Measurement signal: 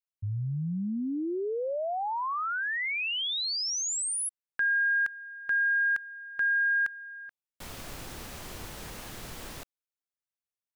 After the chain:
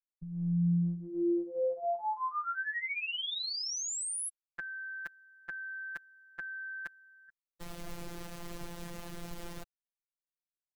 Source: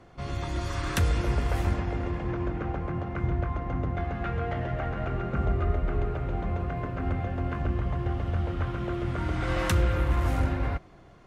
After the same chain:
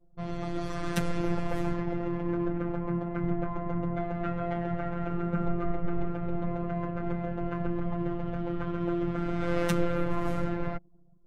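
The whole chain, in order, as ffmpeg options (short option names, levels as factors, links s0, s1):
-af "anlmdn=0.1,afftfilt=real='hypot(re,im)*cos(PI*b)':imag='0':win_size=1024:overlap=0.75,tiltshelf=f=760:g=3.5,volume=1.19"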